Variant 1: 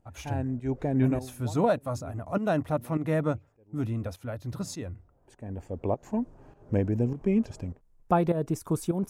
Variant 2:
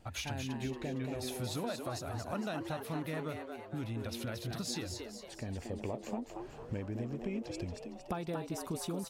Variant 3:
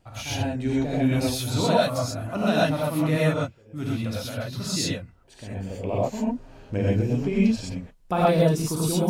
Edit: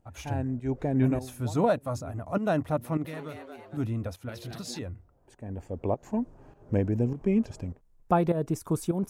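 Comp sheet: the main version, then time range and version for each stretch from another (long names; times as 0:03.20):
1
0:03.05–0:03.77: punch in from 2
0:04.29–0:04.79: punch in from 2
not used: 3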